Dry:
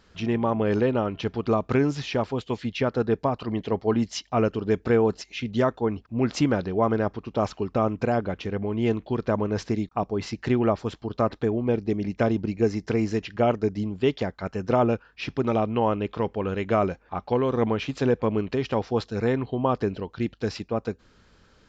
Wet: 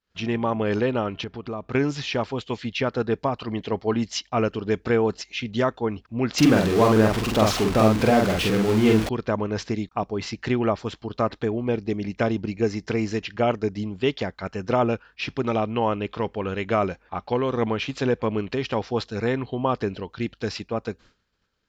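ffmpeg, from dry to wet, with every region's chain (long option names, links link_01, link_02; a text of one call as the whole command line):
ffmpeg -i in.wav -filter_complex "[0:a]asettb=1/sr,asplit=3[link_01][link_02][link_03];[link_01]atrim=end=1.244[link_04];[link_02]atrim=start=1.24:end=1.75,asetpts=PTS-STARTPTS,afade=type=in:duration=0.004:curve=qsin,afade=type=out:start_time=0.506:duration=0.004:curve=qsin,highshelf=frequency=2700:gain=-8.5,acompressor=threshold=-33dB:ratio=2:attack=3.2:release=140:knee=1:detection=peak[link_05];[link_03]atrim=start=1.746[link_06];[link_04][link_05]acrossfade=duration=0.004:curve1=hsin:curve2=qsin[link_07];[link_07][link_06]acrossfade=duration=0.004:curve1=qsin:curve2=hsin,asettb=1/sr,asplit=3[link_08][link_09][link_10];[link_08]atrim=end=6.384[link_11];[link_09]atrim=start=6.38:end=9.09,asetpts=PTS-STARTPTS,afade=type=in:duration=0.004:curve=qsin,afade=type=out:start_time=2.706:duration=0.004:curve=qsin,aeval=exprs='val(0)+0.5*0.0473*sgn(val(0))':channel_layout=same,equalizer=frequency=220:width=0.51:gain=3.5,asplit=2[link_12][link_13];[link_13]adelay=46,volume=-2.5dB[link_14];[link_12][link_14]amix=inputs=2:normalize=0,atrim=end_sample=119511[link_15];[link_10]atrim=start=9.086[link_16];[link_11][link_15]acrossfade=duration=0.004:curve1=hsin:curve2=qsin[link_17];[link_17][link_16]acrossfade=duration=0.004:curve1=qsin:curve2=hsin,lowpass=frequency=3100:poles=1,agate=range=-33dB:threshold=-45dB:ratio=3:detection=peak,highshelf=frequency=2000:gain=12,volume=-1dB" out.wav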